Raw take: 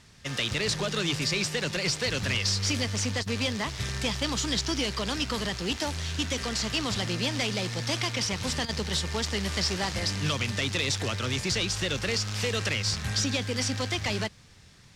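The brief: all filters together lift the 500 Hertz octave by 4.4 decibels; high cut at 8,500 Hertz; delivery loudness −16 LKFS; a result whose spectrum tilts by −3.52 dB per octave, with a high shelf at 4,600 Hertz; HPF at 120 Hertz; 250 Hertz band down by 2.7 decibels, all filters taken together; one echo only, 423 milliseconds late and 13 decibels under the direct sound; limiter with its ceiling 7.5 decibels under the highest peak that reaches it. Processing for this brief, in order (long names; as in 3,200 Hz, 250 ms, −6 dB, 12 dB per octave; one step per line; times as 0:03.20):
high-pass filter 120 Hz
low-pass filter 8,500 Hz
parametric band 250 Hz −5 dB
parametric band 500 Hz +6.5 dB
high-shelf EQ 4,600 Hz −6 dB
brickwall limiter −23 dBFS
single-tap delay 423 ms −13 dB
level +16 dB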